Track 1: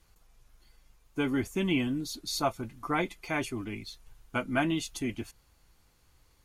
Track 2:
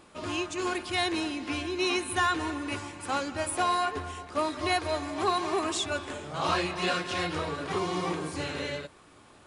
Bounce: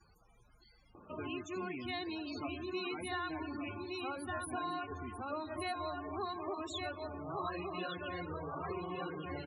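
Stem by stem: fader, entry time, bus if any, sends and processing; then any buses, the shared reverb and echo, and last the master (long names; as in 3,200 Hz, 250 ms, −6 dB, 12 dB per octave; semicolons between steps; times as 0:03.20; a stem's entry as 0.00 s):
−5.0 dB, 0.00 s, no send, echo send −7.5 dB, high-pass filter 140 Hz 6 dB per octave; noise gate with hold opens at −60 dBFS; log-companded quantiser 8 bits
0.0 dB, 0.95 s, no send, echo send −4.5 dB, low-shelf EQ 130 Hz +2 dB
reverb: not used
echo: single-tap delay 1,164 ms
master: upward compression, threshold −52 dBFS; spectral peaks only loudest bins 32; downward compressor 2 to 1, threshold −47 dBFS, peak gain reduction 14 dB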